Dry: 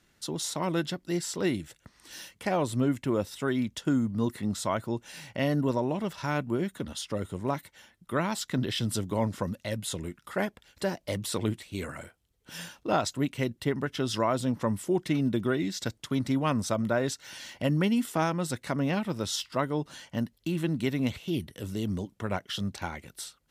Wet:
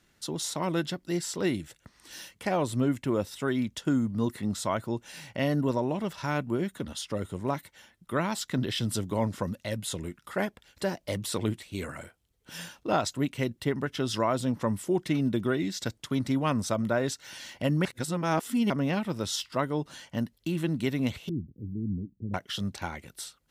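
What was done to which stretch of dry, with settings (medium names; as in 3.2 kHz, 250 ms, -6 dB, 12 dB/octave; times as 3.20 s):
17.85–18.70 s: reverse
21.29–22.34 s: inverse Chebyshev band-stop 1.2–8.7 kHz, stop band 70 dB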